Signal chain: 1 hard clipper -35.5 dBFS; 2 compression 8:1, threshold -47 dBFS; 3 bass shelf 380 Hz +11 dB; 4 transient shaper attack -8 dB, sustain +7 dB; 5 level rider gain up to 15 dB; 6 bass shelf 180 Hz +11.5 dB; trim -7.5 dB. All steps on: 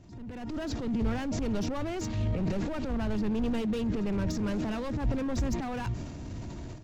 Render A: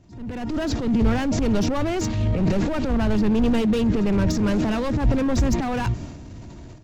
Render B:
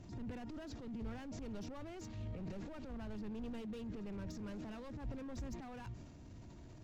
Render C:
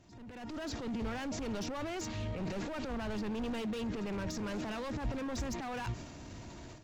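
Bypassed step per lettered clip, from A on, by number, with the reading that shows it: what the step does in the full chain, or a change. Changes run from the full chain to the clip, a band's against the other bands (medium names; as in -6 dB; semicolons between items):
2, momentary loudness spread change +2 LU; 5, momentary loudness spread change -4 LU; 3, 125 Hz band -6.5 dB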